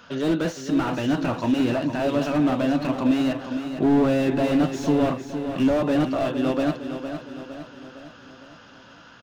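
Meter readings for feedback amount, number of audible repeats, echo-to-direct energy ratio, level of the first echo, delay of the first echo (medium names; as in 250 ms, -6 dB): 52%, 5, -7.5 dB, -9.0 dB, 459 ms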